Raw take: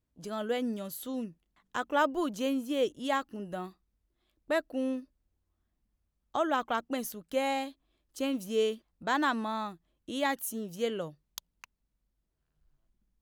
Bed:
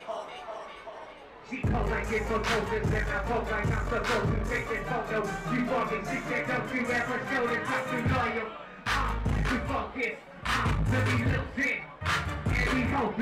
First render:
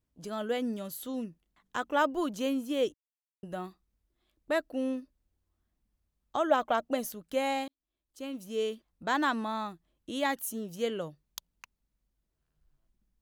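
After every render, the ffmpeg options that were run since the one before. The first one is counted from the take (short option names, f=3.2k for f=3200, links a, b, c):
-filter_complex "[0:a]asettb=1/sr,asplit=3[a][b][c];[a]atrim=end=6.504[d];[b]atrim=start=6.5:end=7.1,asetpts=PTS-STARTPTS,afade=t=in:d=0.004:c=qsin,afade=t=out:st=0.596:d=0.004:c=qsin,equalizer=f=620:w=3.9:g=11[e];[c]atrim=start=7.096[f];[d][e]acrossfade=d=0.004:c1=hsin:c2=qsin[g];[g][f]acrossfade=d=0.004:c1=qsin:c2=hsin,asplit=4[h][i][j][k];[h]atrim=end=2.94,asetpts=PTS-STARTPTS,afade=t=out:st=2.936:d=0.004:c=hsin[l];[i]atrim=start=2.94:end=3.43,asetpts=PTS-STARTPTS,volume=0[m];[j]atrim=start=3.43:end=7.68,asetpts=PTS-STARTPTS,afade=t=in:d=0.004:c=hsin,afade=t=out:st=4.246:d=0.004:c=hsin[n];[k]atrim=start=7.68,asetpts=PTS-STARTPTS,afade=t=in:d=1.39[o];[l][m][n][o]concat=n=4:v=0:a=1"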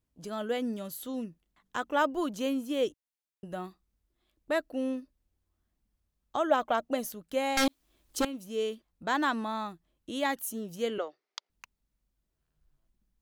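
-filter_complex "[0:a]asettb=1/sr,asplit=3[a][b][c];[a]atrim=end=7.574[d];[b]atrim=start=7.57:end=8.25,asetpts=PTS-STARTPTS,afade=t=in:d=0.004:c=qsin,afade=t=out:st=0.676:d=0.004:c=qsin,aeval=exprs='0.0841*sin(PI/2*5.62*val(0)/0.0841)':c=same[e];[c]atrim=start=8.246[f];[d][e]acrossfade=d=0.004:c1=hsin:c2=qsin[g];[g][f]acrossfade=d=0.004:c1=qsin:c2=hsin,asettb=1/sr,asplit=3[h][i][j];[h]atrim=end=10.984[k];[i]atrim=start=10.98:end=11.5,asetpts=PTS-STARTPTS,afade=t=in:d=0.004:c=qsin,afade=t=out:st=0.516:d=0.004:c=qsin,highpass=f=360:w=0.5412,highpass=f=360:w=1.3066,equalizer=f=400:t=q:w=4:g=8,equalizer=f=740:t=q:w=4:g=7,equalizer=f=1.3k:t=q:w=4:g=7,equalizer=f=2.1k:t=q:w=4:g=10,equalizer=f=5k:t=q:w=4:g=4,lowpass=f=5.9k:w=0.5412,lowpass=f=5.9k:w=1.3066[l];[j]atrim=start=11.496[m];[k][l]acrossfade=d=0.004:c1=hsin:c2=qsin[n];[n][m]acrossfade=d=0.004:c1=qsin:c2=hsin"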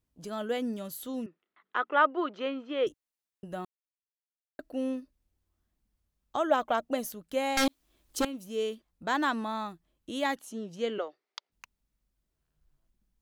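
-filter_complex "[0:a]asettb=1/sr,asplit=3[a][b][c];[a]atrim=end=1.264[d];[b]atrim=start=1.26:end=2.87,asetpts=PTS-STARTPTS,afade=t=in:d=0.004:c=qsin,afade=t=out:st=1.606:d=0.004:c=qsin,highpass=380,equalizer=f=390:t=q:w=4:g=7,equalizer=f=1.3k:t=q:w=4:g=9,equalizer=f=2k:t=q:w=4:g=5,lowpass=f=3.6k:w=0.5412,lowpass=f=3.6k:w=1.3066[e];[c]atrim=start=2.866[f];[d][e]acrossfade=d=0.004:c1=hsin:c2=qsin[g];[g][f]acrossfade=d=0.004:c1=qsin:c2=hsin,asettb=1/sr,asplit=3[h][i][j];[h]atrim=end=10.384[k];[i]atrim=start=10.38:end=11.52,asetpts=PTS-STARTPTS,afade=t=in:d=0.004:c=qsin,afade=t=out:st=1.136:d=0.004:c=qsin,highpass=140,lowpass=5.7k[l];[j]atrim=start=11.516[m];[k][l]acrossfade=d=0.004:c1=hsin:c2=qsin[n];[n][m]acrossfade=d=0.004:c1=qsin:c2=hsin,asplit=3[o][p][q];[o]atrim=end=3.65,asetpts=PTS-STARTPTS,afade=t=out:st=3.646:d=0.004:c=hsin[r];[p]atrim=start=3.65:end=4.59,asetpts=PTS-STARTPTS,volume=0[s];[q]atrim=start=4.59,asetpts=PTS-STARTPTS,afade=t=in:d=0.004:c=hsin[t];[r][s][t]concat=n=3:v=0:a=1"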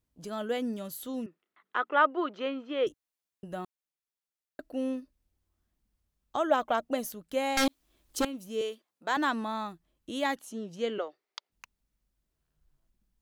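-filter_complex "[0:a]asettb=1/sr,asplit=3[a][b][c];[a]atrim=end=8.614[d];[b]atrim=start=8.61:end=9.17,asetpts=PTS-STARTPTS,afade=t=in:d=0.004:c=qsin,afade=t=out:st=0.556:d=0.004:c=qsin,highpass=370[e];[c]atrim=start=9.166[f];[d][e]acrossfade=d=0.004:c1=hsin:c2=qsin[g];[g][f]acrossfade=d=0.004:c1=qsin:c2=hsin"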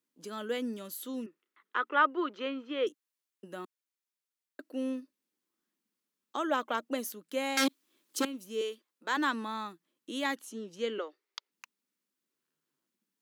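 -af "highpass=f=230:w=0.5412,highpass=f=230:w=1.3066,equalizer=f=690:t=o:w=0.48:g=-11.5"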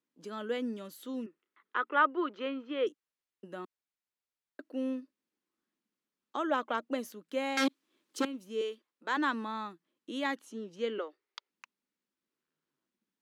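-af "aemphasis=mode=reproduction:type=50kf"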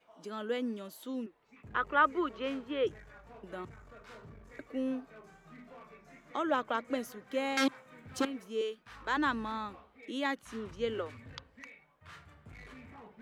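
-filter_complex "[1:a]volume=-24dB[a];[0:a][a]amix=inputs=2:normalize=0"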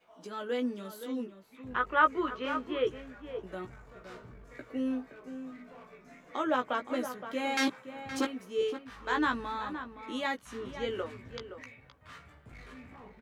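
-filter_complex "[0:a]asplit=2[a][b];[b]adelay=16,volume=-4.5dB[c];[a][c]amix=inputs=2:normalize=0,asplit=2[d][e];[e]adelay=519,volume=-10dB,highshelf=f=4k:g=-11.7[f];[d][f]amix=inputs=2:normalize=0"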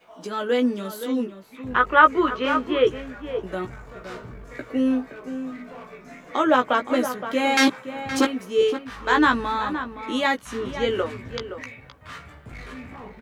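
-af "volume=11dB,alimiter=limit=-3dB:level=0:latency=1"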